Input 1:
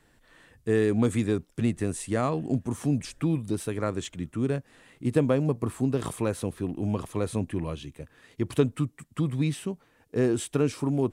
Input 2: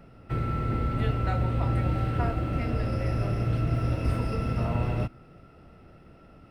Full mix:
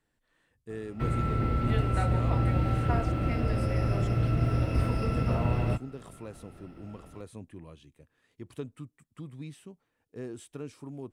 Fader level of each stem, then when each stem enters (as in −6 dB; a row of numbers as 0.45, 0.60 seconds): −15.5, 0.0 decibels; 0.00, 0.70 seconds